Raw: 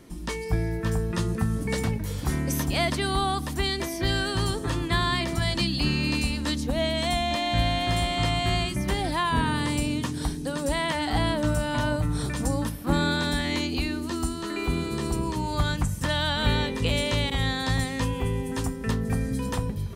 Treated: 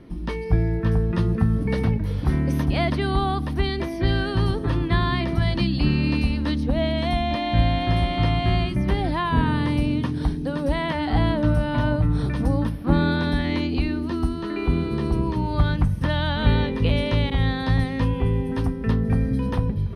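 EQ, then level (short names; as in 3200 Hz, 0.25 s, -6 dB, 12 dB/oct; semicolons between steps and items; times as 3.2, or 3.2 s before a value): running mean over 6 samples; low shelf 440 Hz +6.5 dB; 0.0 dB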